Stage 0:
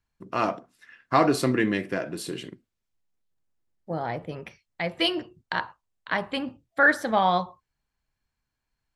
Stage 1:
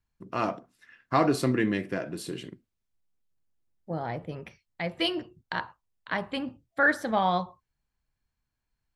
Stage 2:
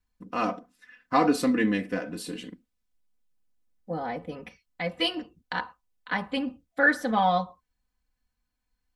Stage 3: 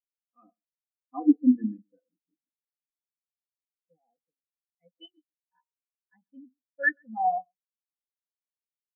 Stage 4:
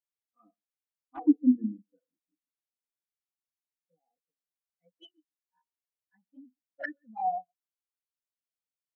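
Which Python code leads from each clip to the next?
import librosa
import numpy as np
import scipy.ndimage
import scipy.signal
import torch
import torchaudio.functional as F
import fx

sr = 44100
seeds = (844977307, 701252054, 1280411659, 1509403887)

y1 = fx.low_shelf(x, sr, hz=250.0, db=5.0)
y1 = y1 * librosa.db_to_amplitude(-4.0)
y2 = y1 + 0.86 * np.pad(y1, (int(4.0 * sr / 1000.0), 0))[:len(y1)]
y2 = y2 * librosa.db_to_amplitude(-1.0)
y3 = y2 + 10.0 ** (-10.5 / 20.0) * np.pad(y2, (int(134 * sr / 1000.0), 0))[:len(y2)]
y3 = fx.spectral_expand(y3, sr, expansion=4.0)
y4 = fx.env_flanger(y3, sr, rest_ms=11.0, full_db=-25.0)
y4 = y4 * librosa.db_to_amplitude(-2.0)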